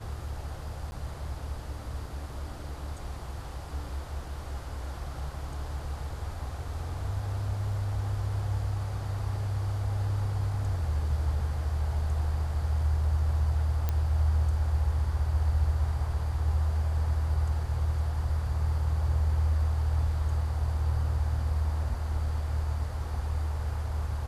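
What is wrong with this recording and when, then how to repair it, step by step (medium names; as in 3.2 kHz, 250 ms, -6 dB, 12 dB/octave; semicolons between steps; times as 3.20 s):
0.91–0.92 s: dropout 10 ms
13.89 s: pop -16 dBFS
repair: de-click; interpolate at 0.91 s, 10 ms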